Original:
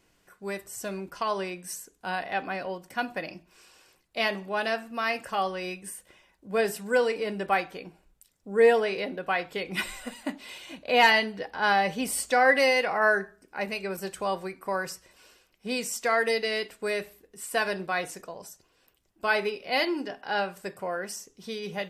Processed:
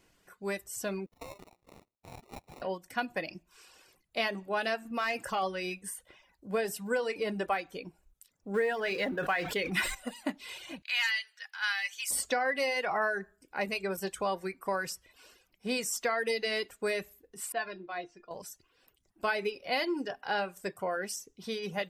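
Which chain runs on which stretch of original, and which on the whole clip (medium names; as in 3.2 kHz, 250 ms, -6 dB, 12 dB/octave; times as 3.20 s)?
1.06–2.62 s: median filter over 15 samples + differentiator + sample-rate reducer 1.6 kHz
4.85–5.43 s: compression 1.5:1, threshold -37 dBFS + waveshaping leveller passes 1 + tape noise reduction on one side only decoder only
8.54–9.95 s: companding laws mixed up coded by mu + peaking EQ 1.7 kHz +7 dB 0.53 oct + decay stretcher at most 73 dB/s
10.82–12.11 s: high-pass 1.5 kHz 24 dB/octave + peaking EQ 6.8 kHz +7 dB 0.37 oct
17.52–18.31 s: low-pass 4.4 kHz 24 dB/octave + feedback comb 350 Hz, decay 0.16 s, mix 80%
whole clip: reverb removal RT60 0.56 s; compression 12:1, threshold -26 dBFS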